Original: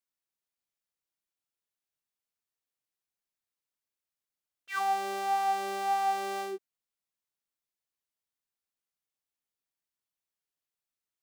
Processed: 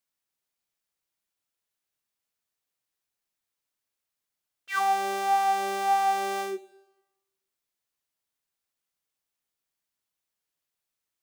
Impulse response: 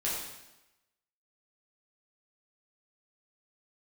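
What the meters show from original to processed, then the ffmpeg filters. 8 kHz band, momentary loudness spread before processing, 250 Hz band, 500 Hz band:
+5.5 dB, 9 LU, +4.5 dB, +4.0 dB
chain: -filter_complex "[0:a]asplit=2[a][b];[b]highpass=f=290:w=0.5412,highpass=f=290:w=1.3066[c];[1:a]atrim=start_sample=2205[d];[c][d]afir=irnorm=-1:irlink=0,volume=-20.5dB[e];[a][e]amix=inputs=2:normalize=0,volume=4.5dB"

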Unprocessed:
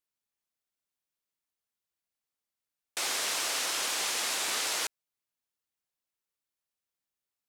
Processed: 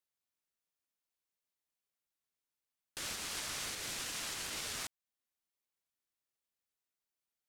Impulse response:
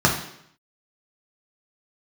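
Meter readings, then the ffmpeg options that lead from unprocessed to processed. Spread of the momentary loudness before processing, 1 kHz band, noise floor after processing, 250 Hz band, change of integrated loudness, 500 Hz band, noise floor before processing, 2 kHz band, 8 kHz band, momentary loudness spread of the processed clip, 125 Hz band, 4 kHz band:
5 LU, -11.5 dB, under -85 dBFS, -3.5 dB, -9.5 dB, -10.5 dB, under -85 dBFS, -9.5 dB, -9.5 dB, 5 LU, n/a, -9.5 dB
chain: -af "alimiter=level_in=3.5dB:limit=-24dB:level=0:latency=1:release=387,volume=-3.5dB,aeval=exprs='val(0)*sin(2*PI*750*n/s+750*0.25/1.3*sin(2*PI*1.3*n/s))':c=same"

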